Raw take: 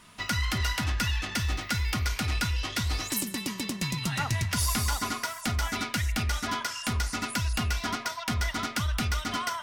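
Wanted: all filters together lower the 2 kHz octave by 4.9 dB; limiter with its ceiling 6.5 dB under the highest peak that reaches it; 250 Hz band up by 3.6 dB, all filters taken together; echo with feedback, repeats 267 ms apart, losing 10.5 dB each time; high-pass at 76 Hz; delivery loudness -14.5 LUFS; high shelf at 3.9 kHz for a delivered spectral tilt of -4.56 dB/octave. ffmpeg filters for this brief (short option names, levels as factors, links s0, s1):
-af "highpass=76,equalizer=f=250:t=o:g=4.5,equalizer=f=2000:t=o:g=-5,highshelf=f=3900:g=-7.5,alimiter=limit=0.0631:level=0:latency=1,aecho=1:1:267|534|801:0.299|0.0896|0.0269,volume=8.91"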